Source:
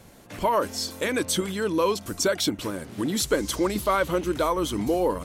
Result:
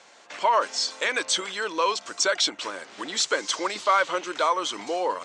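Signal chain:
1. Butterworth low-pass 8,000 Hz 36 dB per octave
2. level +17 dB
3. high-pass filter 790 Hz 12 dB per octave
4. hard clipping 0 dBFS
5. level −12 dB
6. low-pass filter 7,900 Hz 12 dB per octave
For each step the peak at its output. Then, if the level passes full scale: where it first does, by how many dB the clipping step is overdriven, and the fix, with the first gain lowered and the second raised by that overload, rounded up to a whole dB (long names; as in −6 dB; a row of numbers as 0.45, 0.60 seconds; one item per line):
−12.5, +4.5, +3.5, 0.0, −12.0, −11.5 dBFS
step 2, 3.5 dB
step 2 +13 dB, step 5 −8 dB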